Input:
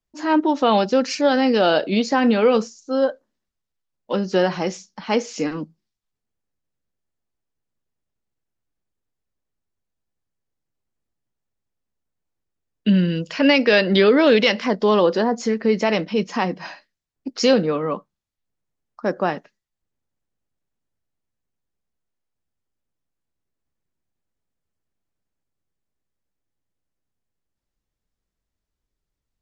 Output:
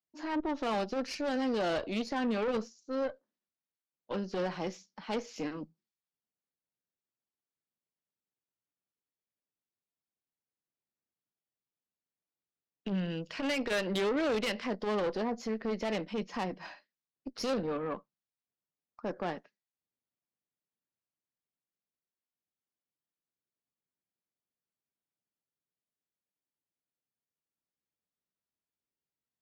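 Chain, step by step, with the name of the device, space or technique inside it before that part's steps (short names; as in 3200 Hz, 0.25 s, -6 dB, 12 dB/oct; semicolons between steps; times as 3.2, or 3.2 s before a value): valve radio (BPF 150–5500 Hz; tube stage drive 18 dB, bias 0.55; core saturation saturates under 150 Hz); gain -8.5 dB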